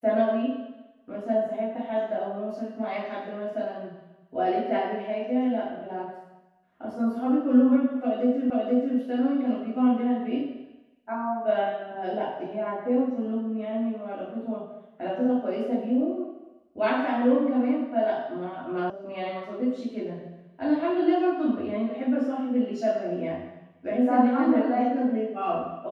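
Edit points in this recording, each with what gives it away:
0:08.50: the same again, the last 0.48 s
0:18.90: cut off before it has died away

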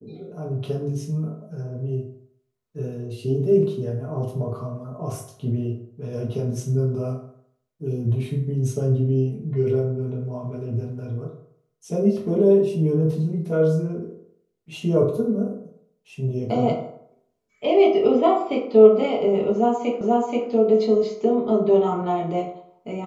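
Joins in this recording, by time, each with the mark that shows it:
0:20.01: the same again, the last 0.48 s

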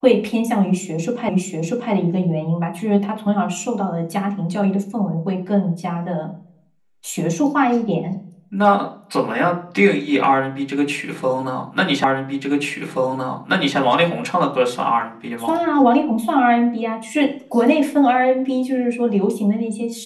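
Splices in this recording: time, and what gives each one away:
0:01.29: the same again, the last 0.64 s
0:12.04: the same again, the last 1.73 s

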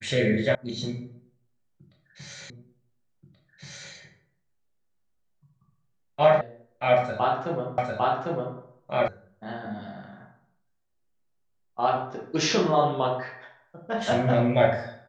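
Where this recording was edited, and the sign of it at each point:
0:00.55: cut off before it has died away
0:02.50: the same again, the last 1.43 s
0:06.41: cut off before it has died away
0:07.78: the same again, the last 0.8 s
0:09.08: cut off before it has died away

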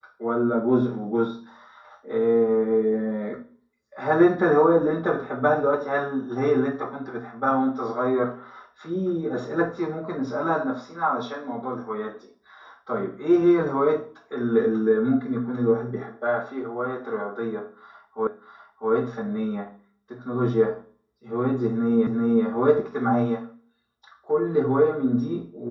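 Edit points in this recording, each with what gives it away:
0:18.27: the same again, the last 0.65 s
0:22.07: the same again, the last 0.38 s

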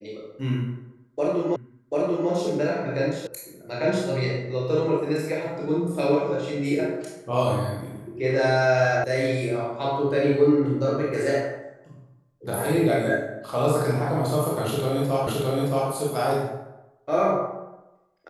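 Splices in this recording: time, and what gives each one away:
0:01.56: the same again, the last 0.74 s
0:03.27: cut off before it has died away
0:09.04: cut off before it has died away
0:15.27: the same again, the last 0.62 s

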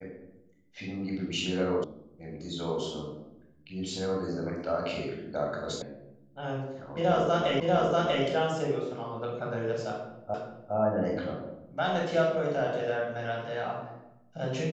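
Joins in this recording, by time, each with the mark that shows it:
0:01.84: cut off before it has died away
0:05.82: cut off before it has died away
0:07.60: the same again, the last 0.64 s
0:10.34: the same again, the last 0.41 s

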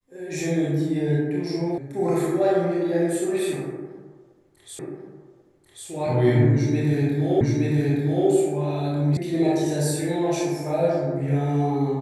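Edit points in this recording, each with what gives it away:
0:01.78: cut off before it has died away
0:04.79: the same again, the last 1.09 s
0:07.41: the same again, the last 0.87 s
0:09.17: cut off before it has died away

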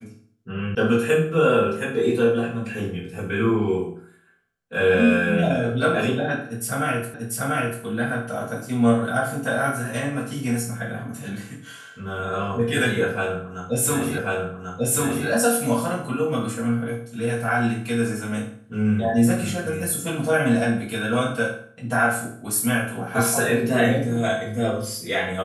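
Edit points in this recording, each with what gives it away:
0:00.75: cut off before it has died away
0:07.14: the same again, the last 0.69 s
0:14.18: the same again, the last 1.09 s

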